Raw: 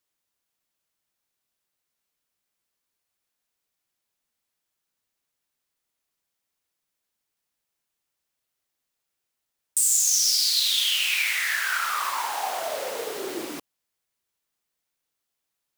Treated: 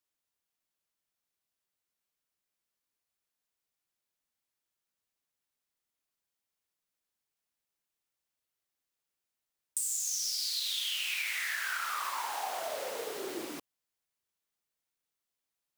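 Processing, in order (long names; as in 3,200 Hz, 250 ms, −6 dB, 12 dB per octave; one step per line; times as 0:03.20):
downward compressor, threshold −24 dBFS, peak gain reduction 7 dB
level −6.5 dB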